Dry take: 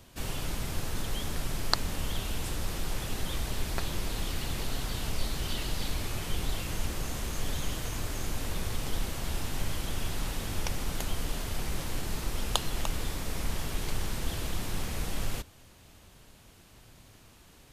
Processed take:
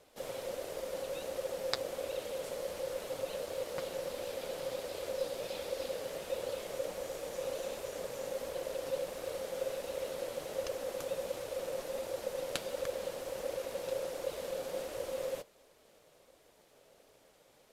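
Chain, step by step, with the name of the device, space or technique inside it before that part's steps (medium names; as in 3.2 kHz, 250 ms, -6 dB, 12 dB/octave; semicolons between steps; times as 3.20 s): alien voice (ring modulator 530 Hz; flange 1.4 Hz, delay 1.7 ms, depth 6.2 ms, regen -45%); trim -2 dB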